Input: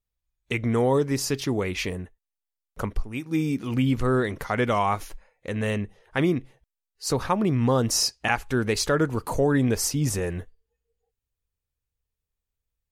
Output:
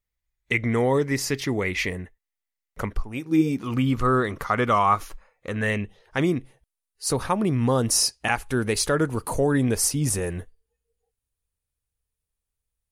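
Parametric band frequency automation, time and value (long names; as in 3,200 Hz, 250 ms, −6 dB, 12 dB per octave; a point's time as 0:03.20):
parametric band +10.5 dB 0.35 octaves
0:02.87 2,000 Hz
0:03.36 260 Hz
0:03.65 1,200 Hz
0:05.50 1,200 Hz
0:06.37 9,800 Hz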